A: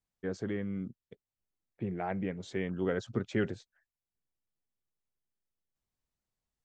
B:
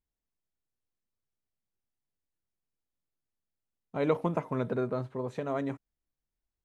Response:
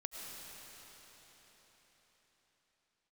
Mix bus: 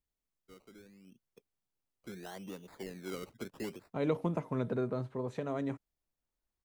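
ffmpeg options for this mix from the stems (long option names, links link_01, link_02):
-filter_complex "[0:a]highpass=210,acrossover=split=450|3000[link_01][link_02][link_03];[link_02]acompressor=threshold=-40dB:ratio=3[link_04];[link_01][link_04][link_03]amix=inputs=3:normalize=0,acrusher=samples=20:mix=1:aa=0.000001:lfo=1:lforange=12:lforate=0.75,adelay=250,volume=-7.5dB,afade=type=in:start_time=1.04:duration=0.34:silence=0.266073[link_05];[1:a]volume=-1.5dB[link_06];[link_05][link_06]amix=inputs=2:normalize=0,acrossover=split=430|3000[link_07][link_08][link_09];[link_08]acompressor=threshold=-41dB:ratio=2[link_10];[link_07][link_10][link_09]amix=inputs=3:normalize=0"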